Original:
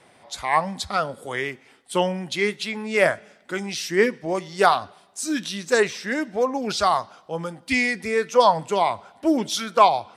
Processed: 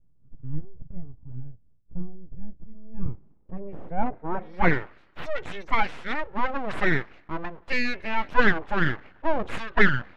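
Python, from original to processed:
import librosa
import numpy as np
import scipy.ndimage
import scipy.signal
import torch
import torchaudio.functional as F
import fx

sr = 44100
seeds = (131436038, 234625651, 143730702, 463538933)

y = fx.spec_gate(x, sr, threshold_db=-20, keep='strong')
y = np.abs(y)
y = fx.filter_sweep_lowpass(y, sr, from_hz=130.0, to_hz=2700.0, start_s=2.79, end_s=5.0, q=0.85)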